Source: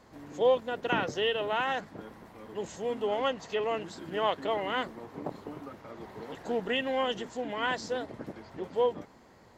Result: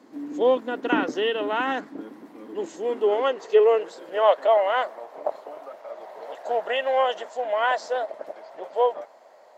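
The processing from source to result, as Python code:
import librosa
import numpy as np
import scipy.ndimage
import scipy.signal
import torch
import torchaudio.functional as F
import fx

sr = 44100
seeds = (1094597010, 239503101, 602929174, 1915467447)

y = fx.dynamic_eq(x, sr, hz=1300.0, q=0.9, threshold_db=-43.0, ratio=4.0, max_db=5)
y = fx.filter_sweep_highpass(y, sr, from_hz=280.0, to_hz=620.0, start_s=2.45, end_s=4.53, q=5.6)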